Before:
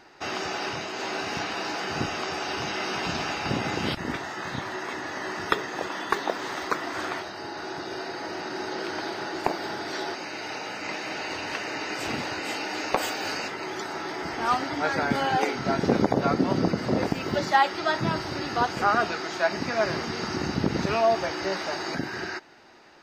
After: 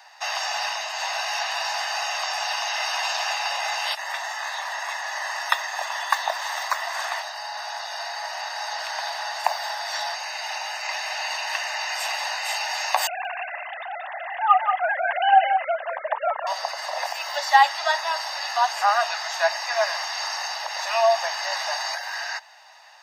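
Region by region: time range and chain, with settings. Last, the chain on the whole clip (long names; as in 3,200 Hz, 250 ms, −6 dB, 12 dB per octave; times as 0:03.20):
0:13.07–0:16.47: three sine waves on the formant tracks + single-tap delay 180 ms −6.5 dB
whole clip: Butterworth high-pass 580 Hz 72 dB per octave; high-shelf EQ 5,800 Hz +9 dB; comb filter 1.1 ms, depth 53%; level +2 dB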